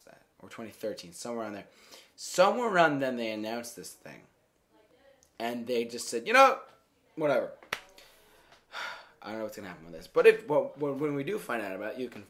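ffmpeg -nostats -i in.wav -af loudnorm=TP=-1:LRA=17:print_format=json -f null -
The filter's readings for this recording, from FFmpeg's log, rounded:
"input_i" : "-29.1",
"input_tp" : "-7.7",
"input_lra" : "7.5",
"input_thresh" : "-40.7",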